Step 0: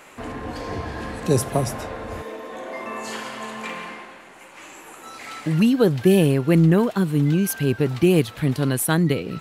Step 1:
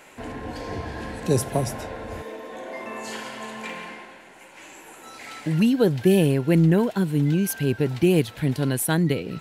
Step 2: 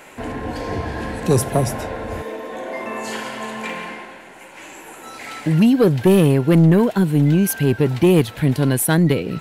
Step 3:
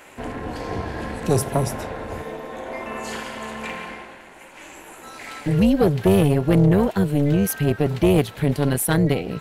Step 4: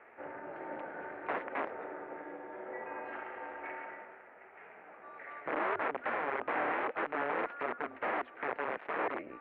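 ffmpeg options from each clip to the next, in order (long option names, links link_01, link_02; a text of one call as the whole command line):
ffmpeg -i in.wav -af "bandreject=frequency=1200:width=5.6,volume=-2dB" out.wav
ffmpeg -i in.wav -af "equalizer=frequency=5100:width_type=o:width=1.7:gain=-3,aeval=exprs='0.422*sin(PI/2*1.41*val(0)/0.422)':channel_layout=same" out.wav
ffmpeg -i in.wav -af "tremolo=f=290:d=0.71" out.wav
ffmpeg -i in.wav -af "aeval=exprs='val(0)+0.0126*(sin(2*PI*50*n/s)+sin(2*PI*2*50*n/s)/2+sin(2*PI*3*50*n/s)/3+sin(2*PI*4*50*n/s)/4+sin(2*PI*5*50*n/s)/5)':channel_layout=same,aeval=exprs='(mod(5.96*val(0)+1,2)-1)/5.96':channel_layout=same,highpass=frequency=530:width_type=q:width=0.5412,highpass=frequency=530:width_type=q:width=1.307,lowpass=frequency=2300:width_type=q:width=0.5176,lowpass=frequency=2300:width_type=q:width=0.7071,lowpass=frequency=2300:width_type=q:width=1.932,afreqshift=-150,volume=-9dB" out.wav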